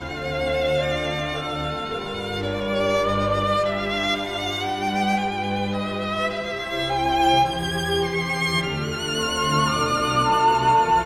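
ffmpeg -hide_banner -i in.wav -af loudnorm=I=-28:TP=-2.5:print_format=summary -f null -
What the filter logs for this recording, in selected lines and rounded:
Input Integrated:    -21.9 LUFS
Input True Peak:      -8.1 dBTP
Input LRA:             3.8 LU
Input Threshold:     -31.9 LUFS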